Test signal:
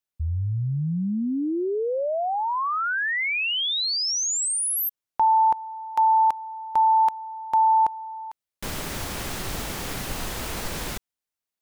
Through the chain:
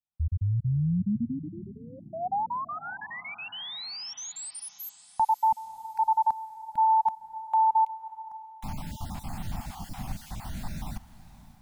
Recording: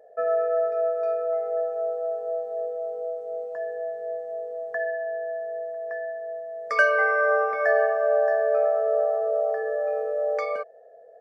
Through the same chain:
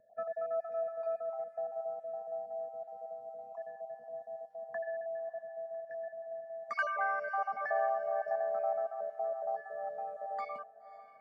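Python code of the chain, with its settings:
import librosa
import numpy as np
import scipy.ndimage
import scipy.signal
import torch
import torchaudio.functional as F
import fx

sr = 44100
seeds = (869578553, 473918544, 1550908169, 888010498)

y = fx.spec_dropout(x, sr, seeds[0], share_pct=31)
y = fx.curve_eq(y, sr, hz=(230.0, 460.0, 760.0, 1500.0), db=(0, -30, 0, -13))
y = fx.echo_diffused(y, sr, ms=563, feedback_pct=41, wet_db=-15.5)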